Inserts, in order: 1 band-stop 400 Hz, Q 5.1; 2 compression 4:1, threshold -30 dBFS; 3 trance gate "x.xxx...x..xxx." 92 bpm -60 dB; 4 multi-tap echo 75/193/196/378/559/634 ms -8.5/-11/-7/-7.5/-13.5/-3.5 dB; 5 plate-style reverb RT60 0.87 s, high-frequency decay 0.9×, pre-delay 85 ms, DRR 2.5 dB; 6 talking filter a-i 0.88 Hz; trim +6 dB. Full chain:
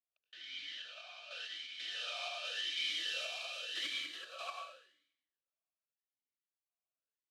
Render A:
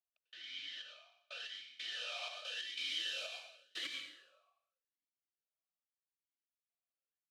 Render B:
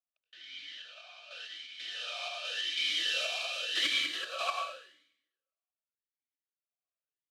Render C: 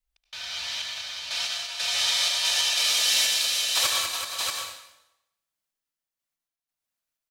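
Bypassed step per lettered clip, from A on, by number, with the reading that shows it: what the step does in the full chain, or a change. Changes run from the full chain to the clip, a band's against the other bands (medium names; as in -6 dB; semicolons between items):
4, momentary loudness spread change +1 LU; 2, crest factor change +2.0 dB; 6, 8 kHz band +14.5 dB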